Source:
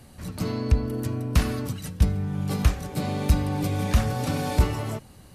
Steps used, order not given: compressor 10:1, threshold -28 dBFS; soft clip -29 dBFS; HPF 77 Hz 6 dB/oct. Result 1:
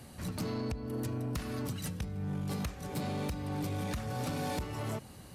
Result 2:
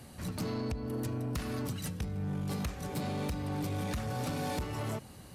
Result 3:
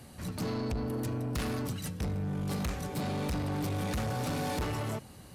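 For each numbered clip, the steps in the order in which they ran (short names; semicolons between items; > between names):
compressor > HPF > soft clip; HPF > compressor > soft clip; HPF > soft clip > compressor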